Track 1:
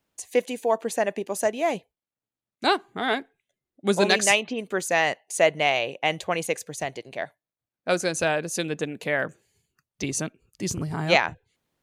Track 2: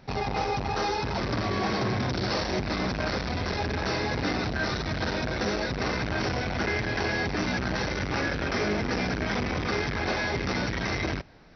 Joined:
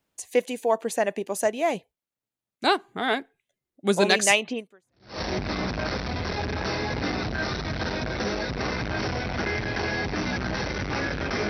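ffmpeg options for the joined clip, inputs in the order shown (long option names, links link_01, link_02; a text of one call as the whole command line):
ffmpeg -i cue0.wav -i cue1.wav -filter_complex "[0:a]apad=whole_dur=11.49,atrim=end=11.49,atrim=end=5.21,asetpts=PTS-STARTPTS[link_01];[1:a]atrim=start=1.78:end=8.7,asetpts=PTS-STARTPTS[link_02];[link_01][link_02]acrossfade=duration=0.64:curve1=exp:curve2=exp" out.wav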